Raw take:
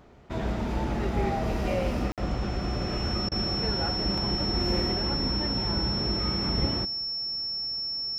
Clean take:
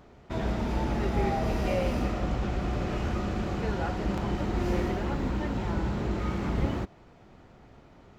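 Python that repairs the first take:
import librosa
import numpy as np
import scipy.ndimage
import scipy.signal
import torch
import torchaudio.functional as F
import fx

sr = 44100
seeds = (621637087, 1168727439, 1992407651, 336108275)

y = fx.notch(x, sr, hz=5400.0, q=30.0)
y = fx.fix_interpolate(y, sr, at_s=(2.12,), length_ms=57.0)
y = fx.fix_interpolate(y, sr, at_s=(3.29,), length_ms=25.0)
y = fx.fix_echo_inverse(y, sr, delay_ms=196, level_db=-24.0)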